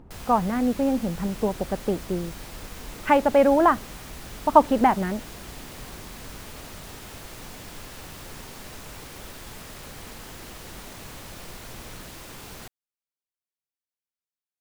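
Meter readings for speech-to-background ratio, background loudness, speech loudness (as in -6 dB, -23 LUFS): 18.0 dB, -40.5 LUFS, -22.5 LUFS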